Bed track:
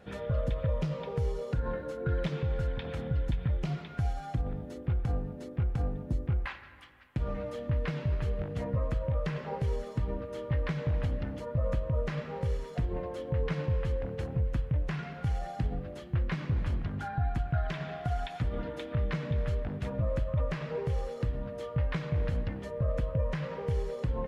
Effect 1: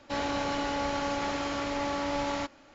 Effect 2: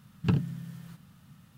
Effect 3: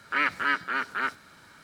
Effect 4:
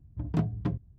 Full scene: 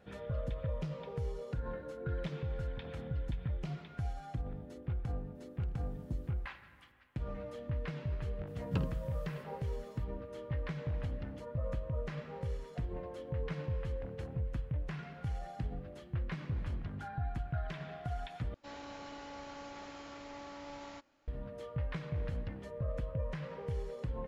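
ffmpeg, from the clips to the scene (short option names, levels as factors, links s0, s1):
-filter_complex "[2:a]asplit=2[s0][s1];[0:a]volume=0.447[s2];[s0]acompressor=threshold=0.0158:ratio=6:attack=3.2:release=140:knee=1:detection=peak[s3];[s1]equalizer=f=120:w=1.9:g=-7.5[s4];[s2]asplit=2[s5][s6];[s5]atrim=end=18.544[s7];[1:a]atrim=end=2.74,asetpts=PTS-STARTPTS,volume=0.15[s8];[s6]atrim=start=21.276[s9];[s3]atrim=end=1.57,asetpts=PTS-STARTPTS,volume=0.168,afade=t=in:d=0.004:c=hsin,afade=t=out:st=1.566:d=0.004:c=hsin,adelay=5350[s10];[s4]atrim=end=1.57,asetpts=PTS-STARTPTS,volume=0.447,afade=t=in:d=0.004:c=hsin,afade=t=out:st=1.566:d=0.004:c=hsin,adelay=8470[s11];[s7][s8]acrossfade=d=0.004:c1=hsin:c2=hsin[s12];[s12][s9]acrossfade=d=0.004:c1=hsin:c2=hsin[s13];[s13][s10][s11]amix=inputs=3:normalize=0"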